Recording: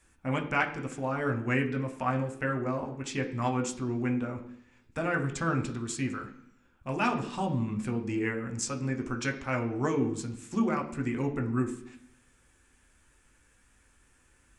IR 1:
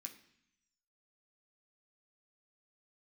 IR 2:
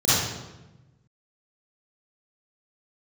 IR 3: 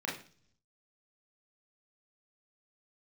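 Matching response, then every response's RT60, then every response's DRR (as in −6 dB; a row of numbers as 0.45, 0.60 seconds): 1; 0.70, 1.1, 0.45 seconds; 2.5, −10.5, −4.0 decibels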